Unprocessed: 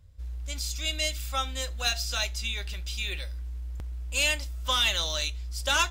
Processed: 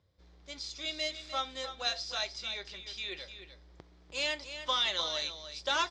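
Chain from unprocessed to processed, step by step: speaker cabinet 210–5100 Hz, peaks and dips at 230 Hz -5 dB, 370 Hz +4 dB, 1500 Hz -4 dB, 2700 Hz -8 dB; echo 0.302 s -10.5 dB; gain -2.5 dB

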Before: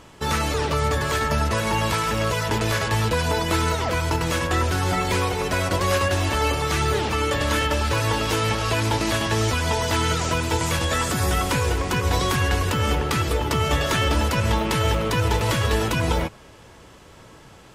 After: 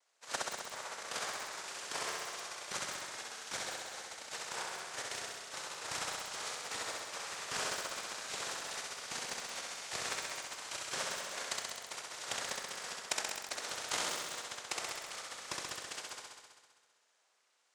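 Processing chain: steep high-pass 1100 Hz 48 dB/oct; added harmonics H 3 -10 dB, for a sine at -10.5 dBFS; in parallel at -3 dB: bit-crush 4-bit; on the sum: noise vocoder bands 3; AM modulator 230 Hz, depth 35%; on a send: flutter echo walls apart 11.2 m, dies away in 1.5 s; on the sum: lo-fi delay 0.175 s, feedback 55%, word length 6-bit, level -8 dB; gain +1 dB

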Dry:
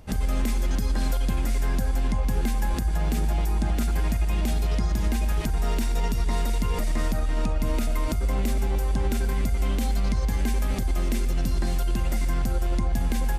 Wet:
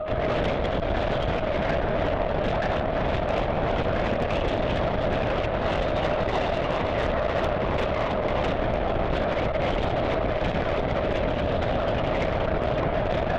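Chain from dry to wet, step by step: one-sided fold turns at -24.5 dBFS; band-limited delay 70 ms, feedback 61%, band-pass 900 Hz, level -5 dB; on a send at -21 dB: reverb RT60 1.0 s, pre-delay 0.139 s; on the sum: whine 620 Hz -30 dBFS; low shelf 200 Hz -7 dB; LPC vocoder at 8 kHz whisper; added harmonics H 6 -18 dB, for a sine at -17.5 dBFS; gain +3.5 dB

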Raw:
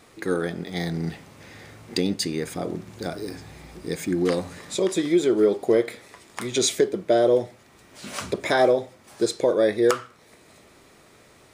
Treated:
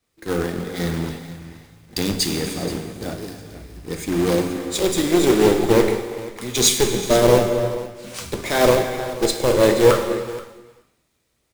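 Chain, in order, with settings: one diode to ground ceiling -20 dBFS; low shelf 160 Hz +7 dB; de-hum 91.45 Hz, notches 2; in parallel at +2 dB: limiter -18 dBFS, peak gain reduction 10.5 dB; on the sum: companded quantiser 4-bit; on a send: echo 0.48 s -9.5 dB; on the sum: non-linear reverb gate 0.46 s flat, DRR 4 dB; three-band expander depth 100%; gain -2.5 dB

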